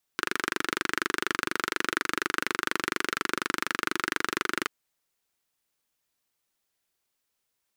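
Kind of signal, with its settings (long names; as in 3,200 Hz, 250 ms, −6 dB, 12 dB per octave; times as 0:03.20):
pulse-train model of a single-cylinder engine, steady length 4.48 s, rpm 2,900, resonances 350/1,400 Hz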